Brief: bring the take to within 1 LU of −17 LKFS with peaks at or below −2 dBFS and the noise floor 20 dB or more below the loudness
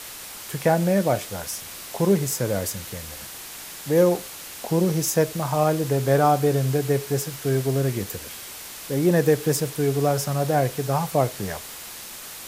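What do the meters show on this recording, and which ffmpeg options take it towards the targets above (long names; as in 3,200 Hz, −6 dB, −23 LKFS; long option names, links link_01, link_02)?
background noise floor −38 dBFS; target noise floor −43 dBFS; integrated loudness −23.0 LKFS; sample peak −6.5 dBFS; target loudness −17.0 LKFS
→ -af "afftdn=noise_reduction=6:noise_floor=-38"
-af "volume=6dB,alimiter=limit=-2dB:level=0:latency=1"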